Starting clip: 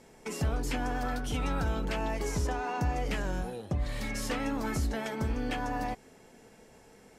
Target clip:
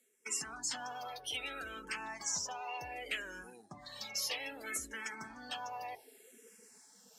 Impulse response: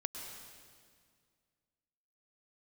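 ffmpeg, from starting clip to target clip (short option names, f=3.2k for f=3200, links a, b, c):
-filter_complex "[0:a]afftdn=nr=21:nf=-44,aderivative,areverse,acompressor=mode=upward:threshold=-55dB:ratio=2.5,areverse,asplit=2[a][b];[b]afreqshift=-0.64[c];[a][c]amix=inputs=2:normalize=1,volume=12.5dB"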